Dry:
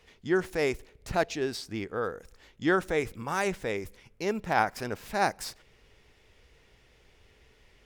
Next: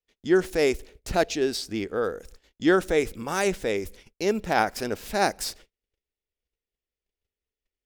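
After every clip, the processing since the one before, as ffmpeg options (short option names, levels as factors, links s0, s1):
-af "agate=range=0.0126:threshold=0.00224:ratio=16:detection=peak,equalizer=f=125:t=o:w=1:g=-9,equalizer=f=1000:t=o:w=1:g=-7,equalizer=f=2000:t=o:w=1:g=-4,volume=2.37"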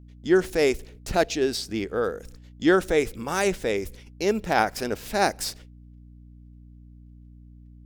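-af "aeval=exprs='val(0)+0.00447*(sin(2*PI*60*n/s)+sin(2*PI*2*60*n/s)/2+sin(2*PI*3*60*n/s)/3+sin(2*PI*4*60*n/s)/4+sin(2*PI*5*60*n/s)/5)':c=same,volume=1.12"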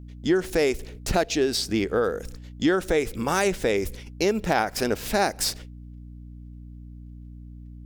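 -af "acompressor=threshold=0.0562:ratio=5,volume=2"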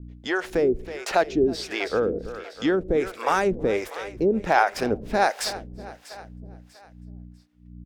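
-filter_complex "[0:a]aecho=1:1:322|644|966|1288|1610|1932:0.2|0.114|0.0648|0.037|0.0211|0.012,asplit=2[s0][s1];[s1]highpass=f=720:p=1,volume=2.24,asoftclip=type=tanh:threshold=0.422[s2];[s0][s2]amix=inputs=2:normalize=0,lowpass=f=1400:p=1,volume=0.501,acrossover=split=480[s3][s4];[s3]aeval=exprs='val(0)*(1-1/2+1/2*cos(2*PI*1.4*n/s))':c=same[s5];[s4]aeval=exprs='val(0)*(1-1/2-1/2*cos(2*PI*1.4*n/s))':c=same[s6];[s5][s6]amix=inputs=2:normalize=0,volume=2.24"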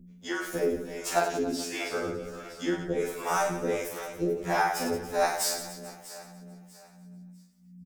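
-filter_complex "[0:a]aexciter=amount=2.4:drive=8.6:freq=5900,asplit=2[s0][s1];[s1]aecho=0:1:40|96|174.4|284.2|437.8:0.631|0.398|0.251|0.158|0.1[s2];[s0][s2]amix=inputs=2:normalize=0,afftfilt=real='re*2*eq(mod(b,4),0)':imag='im*2*eq(mod(b,4),0)':win_size=2048:overlap=0.75,volume=0.562"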